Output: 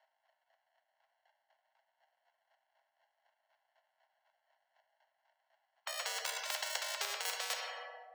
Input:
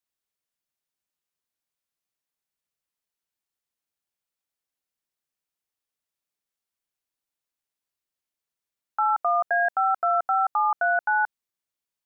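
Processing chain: speed glide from 166% -> 130%; flange 0.64 Hz, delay 4.2 ms, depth 4.9 ms, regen +74%; chopper 4 Hz, depth 60%, duty 20%; sample-and-hold 36×; steep high-pass 640 Hz 72 dB/oct; air absorption 200 m; on a send at -6.5 dB: reverb RT60 1.0 s, pre-delay 8 ms; on the sum: spectral compressor 10:1; gain +5 dB

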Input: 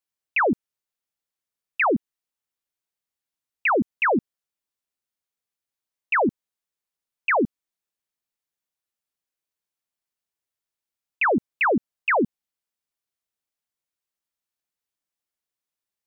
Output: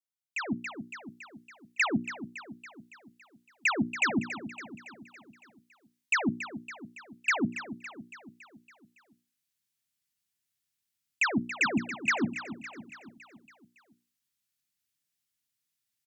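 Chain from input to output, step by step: added harmonics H 3 -17 dB, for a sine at -16 dBFS; limiter -26 dBFS, peak gain reduction 11 dB; graphic EQ 125/250/500/1000 Hz +11/+6/-11/-5 dB; on a send: feedback echo 0.28 s, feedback 56%, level -12 dB; on the sum: AGC gain up to 14.5 dB; tilt shelf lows -4 dB, about 1200 Hz; notches 60/120/180/240/300/360 Hz; gain -8 dB

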